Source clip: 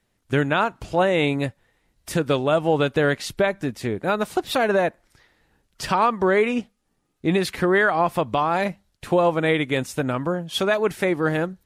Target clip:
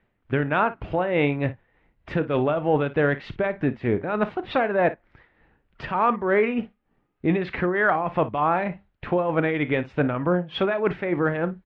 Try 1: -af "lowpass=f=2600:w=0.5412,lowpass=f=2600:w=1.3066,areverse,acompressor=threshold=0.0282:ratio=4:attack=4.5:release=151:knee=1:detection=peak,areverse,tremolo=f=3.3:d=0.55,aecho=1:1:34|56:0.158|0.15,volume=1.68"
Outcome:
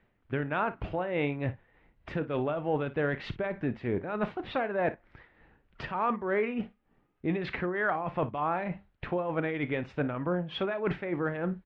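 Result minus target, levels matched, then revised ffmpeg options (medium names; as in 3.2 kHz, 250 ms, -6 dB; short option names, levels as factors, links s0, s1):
compression: peak gain reduction +8 dB
-af "lowpass=f=2600:w=0.5412,lowpass=f=2600:w=1.3066,areverse,acompressor=threshold=0.1:ratio=4:attack=4.5:release=151:knee=1:detection=peak,areverse,tremolo=f=3.3:d=0.55,aecho=1:1:34|56:0.158|0.15,volume=1.68"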